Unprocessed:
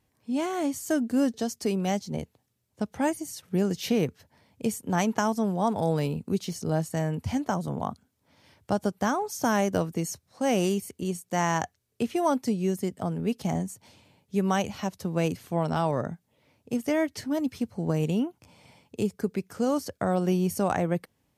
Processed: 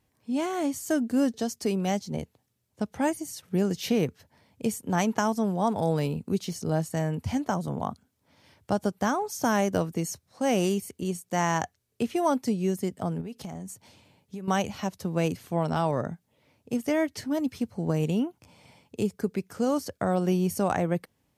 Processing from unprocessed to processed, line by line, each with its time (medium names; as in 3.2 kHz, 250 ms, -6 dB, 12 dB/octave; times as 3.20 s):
13.21–14.48 s: compression 12:1, threshold -33 dBFS